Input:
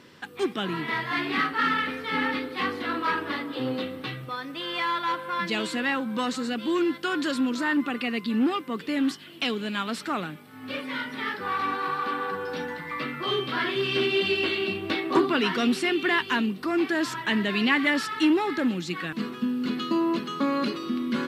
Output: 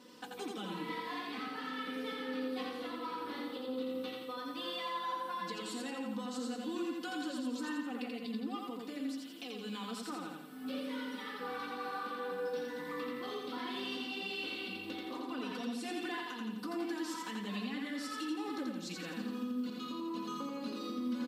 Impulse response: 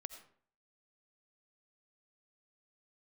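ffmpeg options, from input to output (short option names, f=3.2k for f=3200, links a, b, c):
-af "highpass=f=350:p=1,equalizer=f=1.9k:w=0.86:g=-11.5,bandreject=f=650:w=16,aecho=1:1:4:0.9,acompressor=threshold=-29dB:ratio=6,alimiter=level_in=5.5dB:limit=-24dB:level=0:latency=1:release=489,volume=-5.5dB,flanger=delay=4.9:depth=9.2:regen=-71:speed=0.56:shape=triangular,aecho=1:1:85|170|255|340|425|510|595:0.708|0.368|0.191|0.0995|0.0518|0.0269|0.014,volume=1dB"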